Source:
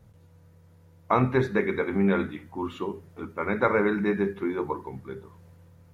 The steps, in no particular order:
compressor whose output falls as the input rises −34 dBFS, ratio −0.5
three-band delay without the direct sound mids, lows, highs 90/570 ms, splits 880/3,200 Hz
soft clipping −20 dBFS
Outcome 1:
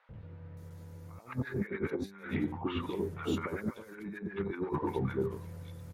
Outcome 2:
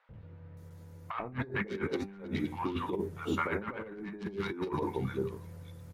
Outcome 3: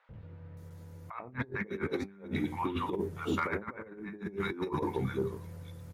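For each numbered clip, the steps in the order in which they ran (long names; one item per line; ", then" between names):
compressor whose output falls as the input rises, then soft clipping, then three-band delay without the direct sound
soft clipping, then three-band delay without the direct sound, then compressor whose output falls as the input rises
three-band delay without the direct sound, then compressor whose output falls as the input rises, then soft clipping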